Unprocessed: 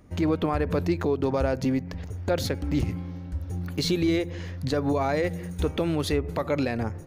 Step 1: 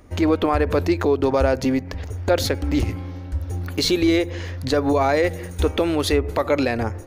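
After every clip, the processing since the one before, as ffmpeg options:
ffmpeg -i in.wav -af "equalizer=frequency=160:width_type=o:width=0.65:gain=-14.5,volume=7.5dB" out.wav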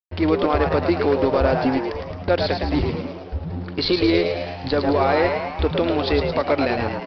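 ffmpeg -i in.wav -filter_complex "[0:a]aresample=11025,aeval=exprs='sgn(val(0))*max(abs(val(0))-0.0211,0)':channel_layout=same,aresample=44100,asplit=9[link_01][link_02][link_03][link_04][link_05][link_06][link_07][link_08][link_09];[link_02]adelay=109,afreqshift=91,volume=-5.5dB[link_10];[link_03]adelay=218,afreqshift=182,volume=-10.4dB[link_11];[link_04]adelay=327,afreqshift=273,volume=-15.3dB[link_12];[link_05]adelay=436,afreqshift=364,volume=-20.1dB[link_13];[link_06]adelay=545,afreqshift=455,volume=-25dB[link_14];[link_07]adelay=654,afreqshift=546,volume=-29.9dB[link_15];[link_08]adelay=763,afreqshift=637,volume=-34.8dB[link_16];[link_09]adelay=872,afreqshift=728,volume=-39.7dB[link_17];[link_01][link_10][link_11][link_12][link_13][link_14][link_15][link_16][link_17]amix=inputs=9:normalize=0" out.wav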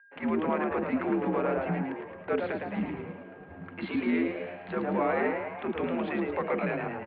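ffmpeg -i in.wav -filter_complex "[0:a]aeval=exprs='val(0)+0.00398*sin(2*PI*1700*n/s)':channel_layout=same,acrossover=split=490[link_01][link_02];[link_01]adelay=40[link_03];[link_03][link_02]amix=inputs=2:normalize=0,highpass=frequency=250:width_type=q:width=0.5412,highpass=frequency=250:width_type=q:width=1.307,lowpass=frequency=2700:width_type=q:width=0.5176,lowpass=frequency=2700:width_type=q:width=0.7071,lowpass=frequency=2700:width_type=q:width=1.932,afreqshift=-86,volume=-7dB" out.wav

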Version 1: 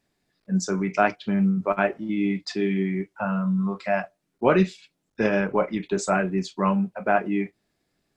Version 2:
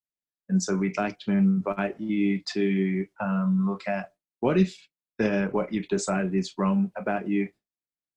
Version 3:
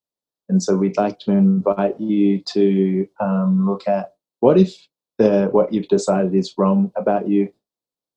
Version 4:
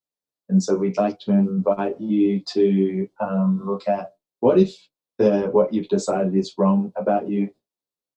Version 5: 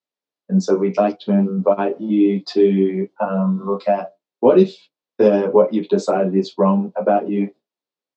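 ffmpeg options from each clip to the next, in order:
ffmpeg -i in.wav -filter_complex "[0:a]agate=range=-33dB:threshold=-37dB:ratio=3:detection=peak,acrossover=split=390|3000[link_01][link_02][link_03];[link_02]acompressor=threshold=-28dB:ratio=6[link_04];[link_01][link_04][link_03]amix=inputs=3:normalize=0" out.wav
ffmpeg -i in.wav -af "equalizer=frequency=125:width_type=o:width=1:gain=5,equalizer=frequency=250:width_type=o:width=1:gain=5,equalizer=frequency=500:width_type=o:width=1:gain=12,equalizer=frequency=1000:width_type=o:width=1:gain=7,equalizer=frequency=2000:width_type=o:width=1:gain=-10,equalizer=frequency=4000:width_type=o:width=1:gain=8" out.wav
ffmpeg -i in.wav -filter_complex "[0:a]asplit=2[link_01][link_02];[link_02]adelay=10.8,afreqshift=2.8[link_03];[link_01][link_03]amix=inputs=2:normalize=1" out.wav
ffmpeg -i in.wav -af "highpass=200,lowpass=4500,volume=4.5dB" out.wav

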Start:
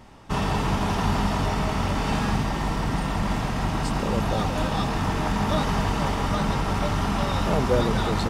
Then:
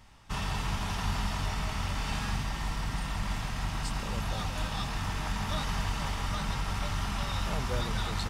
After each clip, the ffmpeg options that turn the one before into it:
ffmpeg -i in.wav -af "equalizer=frequency=370:width_type=o:width=2.8:gain=-13.5,volume=-3dB" out.wav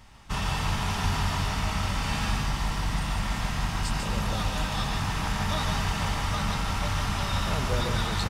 ffmpeg -i in.wav -af "aecho=1:1:145:0.562,volume=4dB" out.wav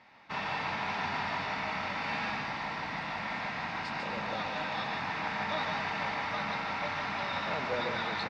ffmpeg -i in.wav -af "highpass=320,equalizer=frequency=390:width_type=q:width=4:gain=-5,equalizer=frequency=1200:width_type=q:width=4:gain=-5,equalizer=frequency=2200:width_type=q:width=4:gain=4,equalizer=frequency=3100:width_type=q:width=4:gain=-10,lowpass=frequency=3900:width=0.5412,lowpass=frequency=3900:width=1.3066" out.wav

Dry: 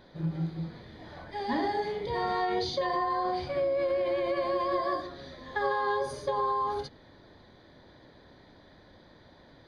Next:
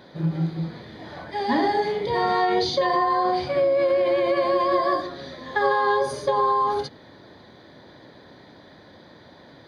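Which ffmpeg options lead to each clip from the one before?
ffmpeg -i in.wav -af "highpass=110,volume=8dB" out.wav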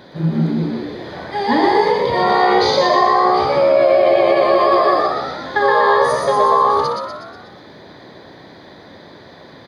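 ffmpeg -i in.wav -filter_complex "[0:a]asplit=8[link_01][link_02][link_03][link_04][link_05][link_06][link_07][link_08];[link_02]adelay=122,afreqshift=65,volume=-3.5dB[link_09];[link_03]adelay=244,afreqshift=130,volume=-9dB[link_10];[link_04]adelay=366,afreqshift=195,volume=-14.5dB[link_11];[link_05]adelay=488,afreqshift=260,volume=-20dB[link_12];[link_06]adelay=610,afreqshift=325,volume=-25.6dB[link_13];[link_07]adelay=732,afreqshift=390,volume=-31.1dB[link_14];[link_08]adelay=854,afreqshift=455,volume=-36.6dB[link_15];[link_01][link_09][link_10][link_11][link_12][link_13][link_14][link_15]amix=inputs=8:normalize=0,volume=6dB" out.wav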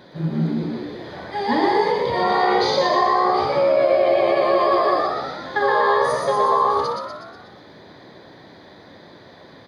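ffmpeg -i in.wav -af "flanger=delay=5.5:depth=5.2:regen=-74:speed=1.1:shape=sinusoidal" out.wav

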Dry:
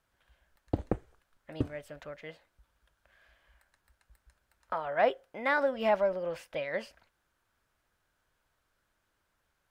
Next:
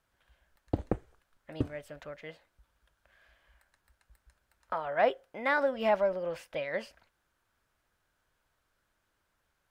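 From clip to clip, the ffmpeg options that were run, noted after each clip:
ffmpeg -i in.wav -af anull out.wav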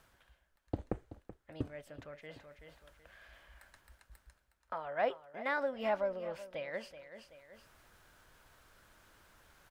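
ffmpeg -i in.wav -af "aecho=1:1:379|758:0.178|0.0373,areverse,acompressor=mode=upward:threshold=-39dB:ratio=2.5,areverse,volume=-6.5dB" out.wav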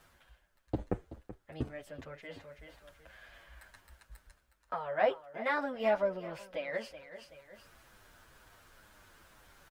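ffmpeg -i in.wav -filter_complex "[0:a]asplit=2[link_01][link_02];[link_02]adelay=8.1,afreqshift=-2.1[link_03];[link_01][link_03]amix=inputs=2:normalize=1,volume=6.5dB" out.wav

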